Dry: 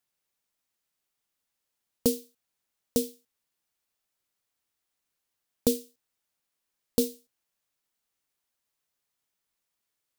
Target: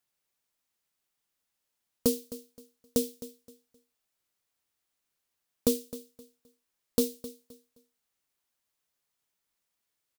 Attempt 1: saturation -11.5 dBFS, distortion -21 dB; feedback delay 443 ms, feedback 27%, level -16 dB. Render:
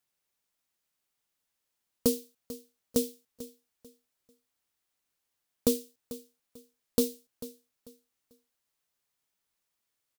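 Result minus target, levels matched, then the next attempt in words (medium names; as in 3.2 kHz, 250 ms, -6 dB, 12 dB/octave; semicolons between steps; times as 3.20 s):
echo 182 ms late
saturation -11.5 dBFS, distortion -21 dB; feedback delay 261 ms, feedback 27%, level -16 dB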